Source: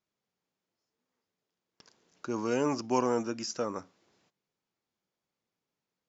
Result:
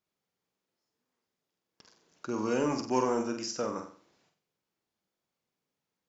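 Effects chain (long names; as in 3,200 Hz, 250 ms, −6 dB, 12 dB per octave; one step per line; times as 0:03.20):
in parallel at −7.5 dB: soft clipping −22 dBFS, distortion −15 dB
on the sum: flutter between parallel walls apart 8 metres, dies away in 0.45 s
level −3.5 dB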